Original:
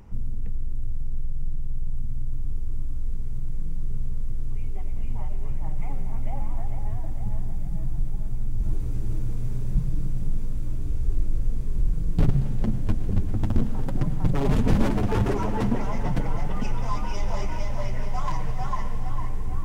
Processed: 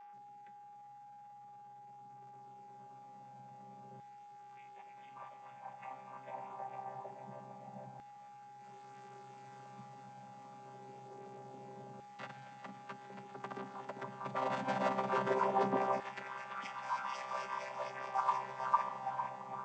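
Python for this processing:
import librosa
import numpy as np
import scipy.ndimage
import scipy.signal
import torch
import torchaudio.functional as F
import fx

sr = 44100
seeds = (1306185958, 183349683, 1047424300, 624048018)

y = fx.chord_vocoder(x, sr, chord='bare fifth', root=48)
y = fx.filter_lfo_highpass(y, sr, shape='saw_down', hz=0.25, low_hz=670.0, high_hz=1600.0, q=1.3)
y = y + 10.0 ** (-59.0 / 20.0) * np.sin(2.0 * np.pi * 820.0 * np.arange(len(y)) / sr)
y = F.gain(torch.from_numpy(y), 7.0).numpy()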